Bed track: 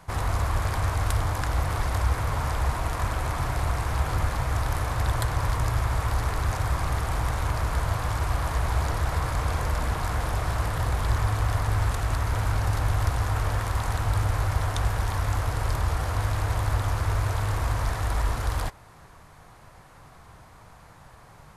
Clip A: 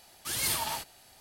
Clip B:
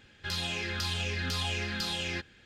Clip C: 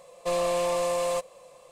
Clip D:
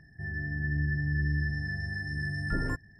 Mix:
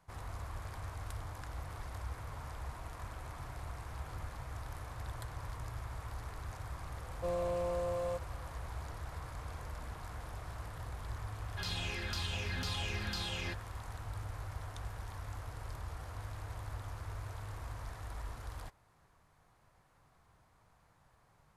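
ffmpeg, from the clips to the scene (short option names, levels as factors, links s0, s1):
-filter_complex "[0:a]volume=0.126[s0];[3:a]tiltshelf=f=1100:g=8.5,atrim=end=1.71,asetpts=PTS-STARTPTS,volume=0.2,afade=t=in:d=0.004:c=hsin,afade=t=out:st=1.706:d=0.004:c=hsin,adelay=6970[s1];[2:a]atrim=end=2.45,asetpts=PTS-STARTPTS,volume=0.473,afade=t=in:d=0.004:c=hsin,afade=t=out:st=2.446:d=0.004:c=hsin,adelay=11330[s2];[s0][s1][s2]amix=inputs=3:normalize=0"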